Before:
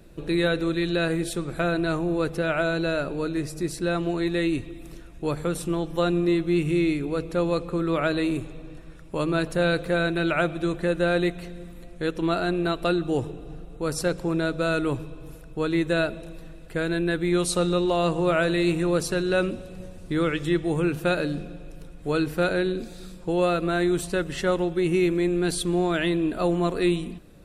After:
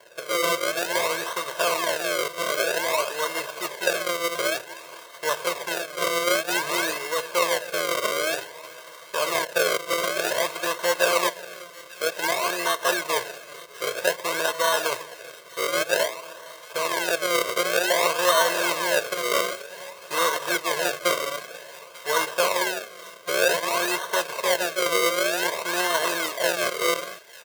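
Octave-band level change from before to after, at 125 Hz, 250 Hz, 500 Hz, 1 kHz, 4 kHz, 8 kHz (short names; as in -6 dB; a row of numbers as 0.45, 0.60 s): -20.0, -13.0, 0.0, +6.0, +8.0, +10.5 dB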